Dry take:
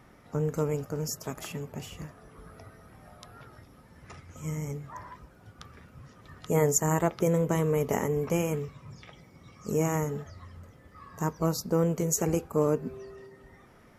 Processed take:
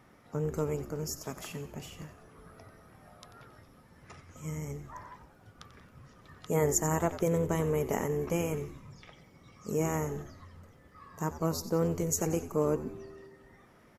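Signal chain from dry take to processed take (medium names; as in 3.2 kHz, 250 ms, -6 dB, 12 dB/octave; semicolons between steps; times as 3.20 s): bass shelf 71 Hz -6.5 dB; frequency-shifting echo 91 ms, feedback 46%, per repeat -79 Hz, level -13 dB; trim -3 dB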